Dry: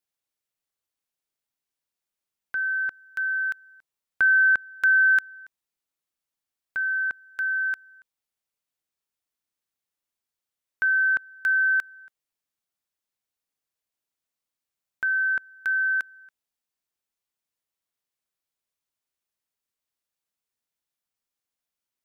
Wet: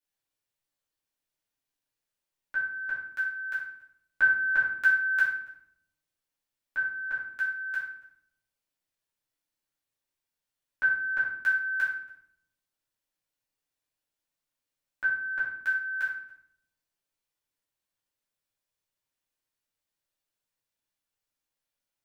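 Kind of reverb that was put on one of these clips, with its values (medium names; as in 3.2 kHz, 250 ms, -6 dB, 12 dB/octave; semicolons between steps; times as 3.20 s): simulated room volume 130 m³, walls mixed, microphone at 2.4 m; trim -8.5 dB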